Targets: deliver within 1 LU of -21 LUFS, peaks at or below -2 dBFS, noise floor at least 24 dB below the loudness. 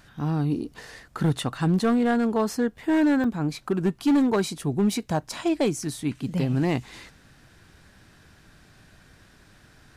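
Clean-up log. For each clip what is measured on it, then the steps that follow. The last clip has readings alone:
clipped 1.4%; flat tops at -16.0 dBFS; dropouts 1; longest dropout 2.2 ms; loudness -25.0 LUFS; peak -16.0 dBFS; loudness target -21.0 LUFS
-> clip repair -16 dBFS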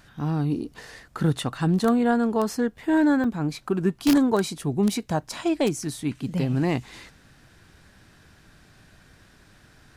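clipped 0.0%; dropouts 1; longest dropout 2.2 ms
-> interpolate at 3.24, 2.2 ms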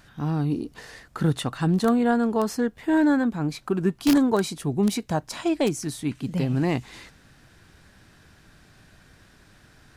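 dropouts 0; loudness -24.5 LUFS; peak -7.0 dBFS; loudness target -21.0 LUFS
-> gain +3.5 dB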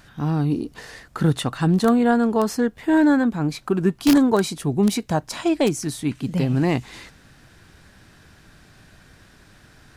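loudness -21.0 LUFS; peak -3.5 dBFS; noise floor -52 dBFS

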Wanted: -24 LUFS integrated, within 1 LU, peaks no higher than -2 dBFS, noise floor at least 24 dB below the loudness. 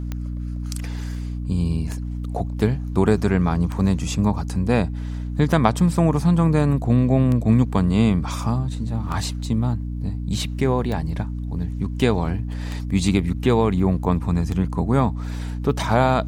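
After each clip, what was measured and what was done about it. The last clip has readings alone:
clicks 9; hum 60 Hz; harmonics up to 300 Hz; hum level -25 dBFS; loudness -22.0 LUFS; peak -1.5 dBFS; loudness target -24.0 LUFS
-> de-click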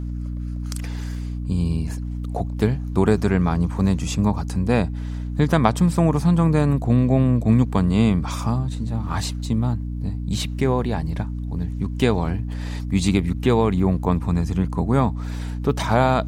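clicks 0; hum 60 Hz; harmonics up to 300 Hz; hum level -25 dBFS
-> de-hum 60 Hz, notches 5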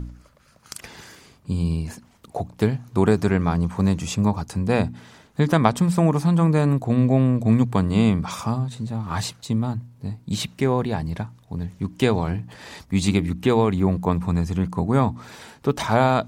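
hum none; loudness -22.5 LUFS; peak -2.0 dBFS; loudness target -24.0 LUFS
-> gain -1.5 dB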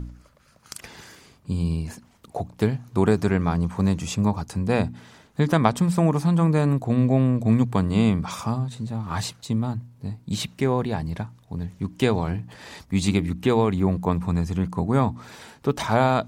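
loudness -24.0 LUFS; peak -3.5 dBFS; noise floor -56 dBFS

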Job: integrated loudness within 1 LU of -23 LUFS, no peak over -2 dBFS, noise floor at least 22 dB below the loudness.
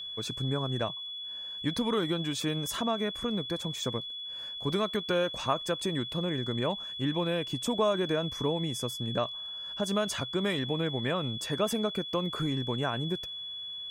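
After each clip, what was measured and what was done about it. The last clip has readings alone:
ticks 38/s; steady tone 3400 Hz; tone level -37 dBFS; loudness -31.5 LUFS; peak -14.0 dBFS; loudness target -23.0 LUFS
-> de-click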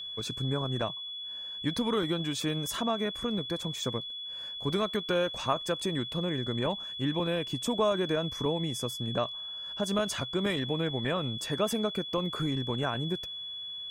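ticks 0/s; steady tone 3400 Hz; tone level -37 dBFS
-> notch 3400 Hz, Q 30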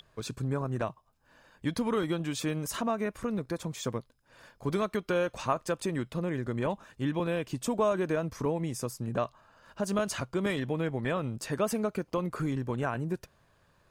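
steady tone none; loudness -32.5 LUFS; peak -14.5 dBFS; loudness target -23.0 LUFS
-> gain +9.5 dB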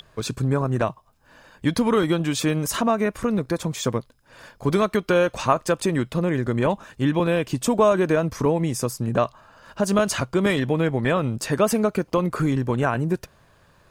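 loudness -23.0 LUFS; peak -5.0 dBFS; noise floor -58 dBFS

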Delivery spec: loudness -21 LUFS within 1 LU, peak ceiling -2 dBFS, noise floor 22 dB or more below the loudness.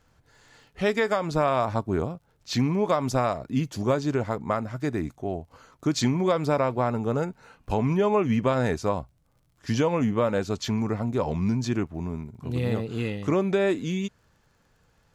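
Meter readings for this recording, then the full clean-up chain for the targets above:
ticks 26/s; loudness -26.5 LUFS; peak -12.0 dBFS; loudness target -21.0 LUFS
-> de-click; gain +5.5 dB

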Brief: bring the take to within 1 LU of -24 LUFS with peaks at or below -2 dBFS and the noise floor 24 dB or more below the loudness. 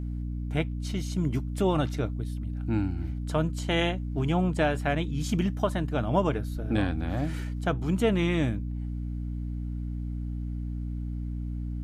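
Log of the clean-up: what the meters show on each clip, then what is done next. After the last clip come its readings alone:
hum 60 Hz; harmonics up to 300 Hz; hum level -30 dBFS; loudness -29.5 LUFS; peak -12.0 dBFS; loudness target -24.0 LUFS
-> notches 60/120/180/240/300 Hz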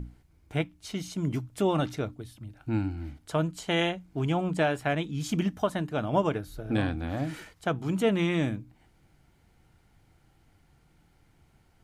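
hum none; loudness -30.0 LUFS; peak -12.5 dBFS; loudness target -24.0 LUFS
-> gain +6 dB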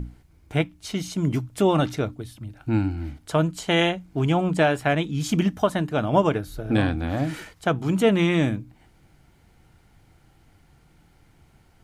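loudness -24.0 LUFS; peak -6.0 dBFS; noise floor -58 dBFS

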